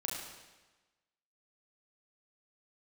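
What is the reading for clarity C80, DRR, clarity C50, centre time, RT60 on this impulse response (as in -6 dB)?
3.5 dB, -3.0 dB, 1.5 dB, 68 ms, 1.2 s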